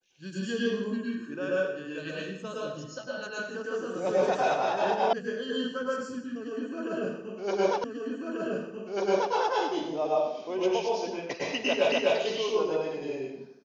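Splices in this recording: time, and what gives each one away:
5.13 s: sound stops dead
7.84 s: repeat of the last 1.49 s
11.92 s: repeat of the last 0.25 s

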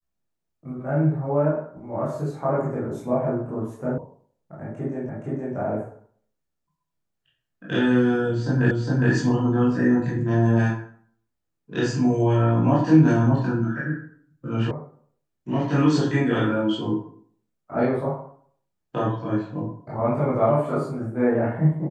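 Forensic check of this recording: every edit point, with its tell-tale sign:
3.98 s: sound stops dead
5.09 s: repeat of the last 0.47 s
8.71 s: repeat of the last 0.41 s
14.71 s: sound stops dead

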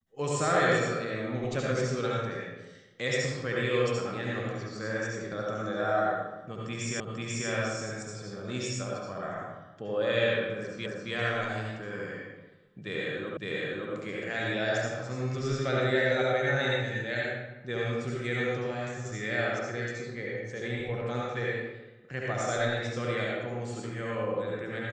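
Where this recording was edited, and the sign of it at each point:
7.00 s: repeat of the last 0.49 s
10.86 s: repeat of the last 0.27 s
13.37 s: repeat of the last 0.56 s

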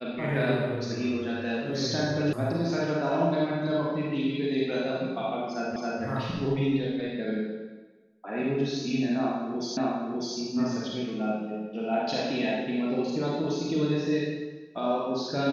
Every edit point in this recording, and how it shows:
2.33 s: sound stops dead
5.76 s: repeat of the last 0.27 s
9.77 s: repeat of the last 0.6 s

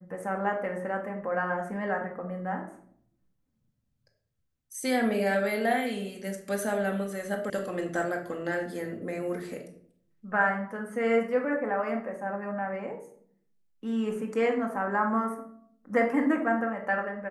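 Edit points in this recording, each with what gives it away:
7.50 s: sound stops dead

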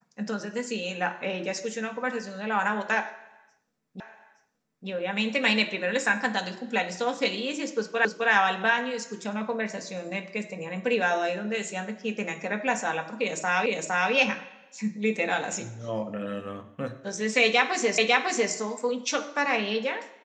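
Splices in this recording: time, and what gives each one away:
4.00 s: repeat of the last 0.87 s
8.05 s: repeat of the last 0.26 s
13.66 s: repeat of the last 0.46 s
17.98 s: repeat of the last 0.55 s

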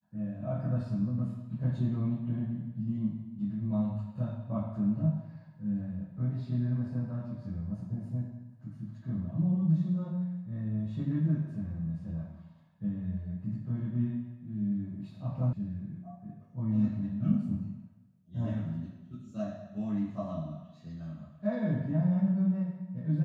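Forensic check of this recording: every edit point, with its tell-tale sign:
15.53 s: sound stops dead

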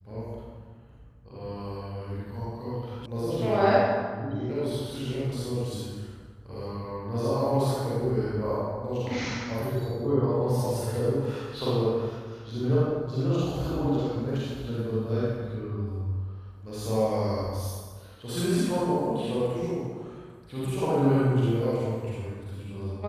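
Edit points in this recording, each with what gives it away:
3.06 s: sound stops dead

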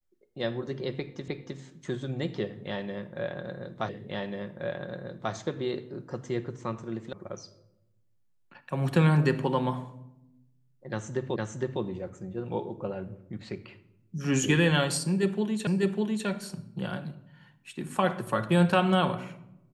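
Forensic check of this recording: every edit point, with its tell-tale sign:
1.28 s: repeat of the last 0.31 s
3.89 s: repeat of the last 1.44 s
7.13 s: sound stops dead
11.36 s: repeat of the last 0.46 s
15.67 s: repeat of the last 0.6 s

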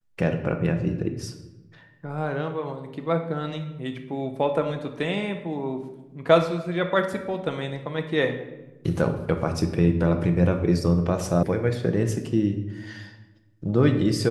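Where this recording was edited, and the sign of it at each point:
11.43 s: sound stops dead

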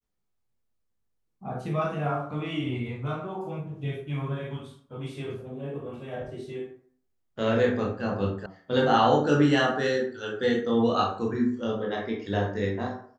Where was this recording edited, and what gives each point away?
8.46 s: sound stops dead

